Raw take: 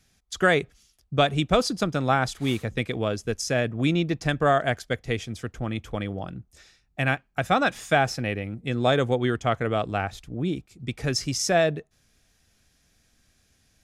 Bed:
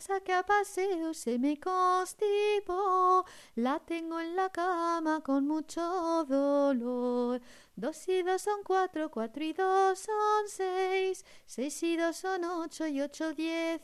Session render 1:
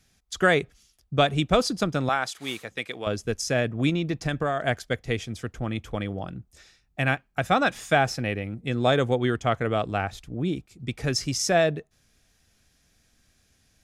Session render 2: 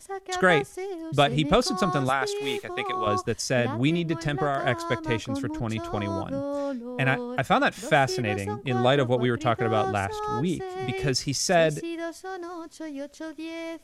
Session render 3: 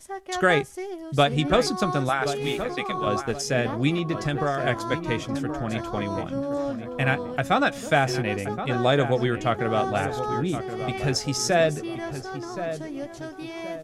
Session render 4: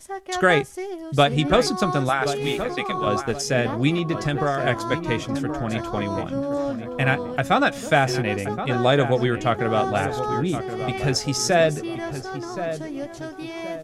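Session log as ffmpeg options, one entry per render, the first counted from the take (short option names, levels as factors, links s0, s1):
-filter_complex "[0:a]asettb=1/sr,asplit=3[s0][s1][s2];[s0]atrim=end=2.094[s3];[s1]atrim=start=2.09:end=3.07,asetpts=PTS-STARTPTS,afade=t=in:d=0.004:c=qsin,afade=t=out:st=0.976:d=0.004:c=qsin,highpass=f=850:p=1[s4];[s2]atrim=start=3.066[s5];[s3][s4]acrossfade=d=0.004:c1=hsin:c2=qsin[s6];[s6][s5]acrossfade=d=0.004:c1=qsin:c2=hsin,asettb=1/sr,asplit=3[s7][s8][s9];[s7]atrim=end=3.894[s10];[s8]atrim=start=3.89:end=4.64,asetpts=PTS-STARTPTS,afade=t=in:d=0.004:c=qsin,afade=t=out:st=0.746:d=0.004:c=qsin,acompressor=threshold=0.0891:ratio=6:attack=3.2:release=140:knee=1:detection=peak[s11];[s9]atrim=start=4.636[s12];[s10][s11]acrossfade=d=0.004:c1=hsin:c2=qsin[s13];[s13][s12]acrossfade=d=0.004:c1=qsin:c2=hsin"
-filter_complex "[1:a]volume=0.75[s0];[0:a][s0]amix=inputs=2:normalize=0"
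-filter_complex "[0:a]asplit=2[s0][s1];[s1]adelay=14,volume=0.237[s2];[s0][s2]amix=inputs=2:normalize=0,asplit=2[s3][s4];[s4]adelay=1073,lowpass=f=1800:p=1,volume=0.335,asplit=2[s5][s6];[s6]adelay=1073,lowpass=f=1800:p=1,volume=0.39,asplit=2[s7][s8];[s8]adelay=1073,lowpass=f=1800:p=1,volume=0.39,asplit=2[s9][s10];[s10]adelay=1073,lowpass=f=1800:p=1,volume=0.39[s11];[s3][s5][s7][s9][s11]amix=inputs=5:normalize=0"
-af "volume=1.33"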